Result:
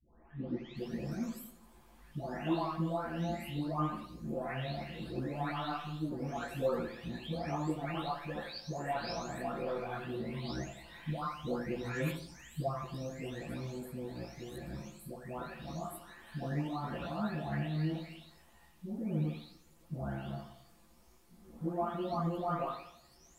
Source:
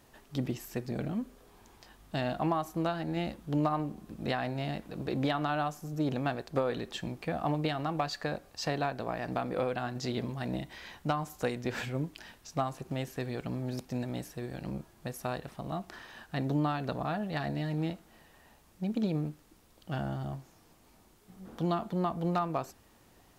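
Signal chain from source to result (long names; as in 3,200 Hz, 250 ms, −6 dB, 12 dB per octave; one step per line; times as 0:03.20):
every frequency bin delayed by itself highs late, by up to 767 ms
feedback echo with a low-pass in the loop 84 ms, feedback 49%, low-pass 2,200 Hz, level −8 dB
multi-voice chorus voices 4, 0.94 Hz, delay 16 ms, depth 3.1 ms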